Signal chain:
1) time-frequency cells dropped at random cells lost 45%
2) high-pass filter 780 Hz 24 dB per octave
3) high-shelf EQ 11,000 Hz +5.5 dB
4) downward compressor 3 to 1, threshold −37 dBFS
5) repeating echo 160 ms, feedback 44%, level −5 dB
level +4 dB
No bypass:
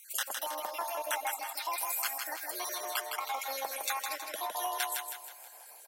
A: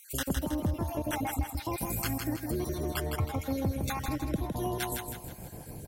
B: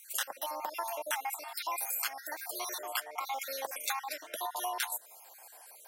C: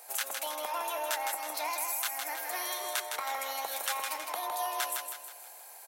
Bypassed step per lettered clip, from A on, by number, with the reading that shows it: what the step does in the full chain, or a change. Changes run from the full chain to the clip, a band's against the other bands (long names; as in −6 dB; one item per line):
2, 250 Hz band +27.5 dB
5, echo-to-direct ratio −4.0 dB to none audible
1, change in crest factor +2.0 dB